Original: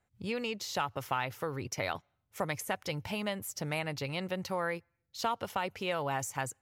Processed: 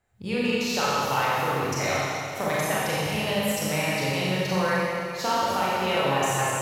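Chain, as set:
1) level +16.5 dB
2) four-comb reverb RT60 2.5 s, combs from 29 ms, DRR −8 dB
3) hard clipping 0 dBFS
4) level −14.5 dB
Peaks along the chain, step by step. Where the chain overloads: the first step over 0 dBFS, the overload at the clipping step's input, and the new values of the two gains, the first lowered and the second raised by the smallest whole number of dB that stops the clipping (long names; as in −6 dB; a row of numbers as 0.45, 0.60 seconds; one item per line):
−2.5, +4.0, 0.0, −14.5 dBFS
step 2, 4.0 dB
step 1 +12.5 dB, step 4 −10.5 dB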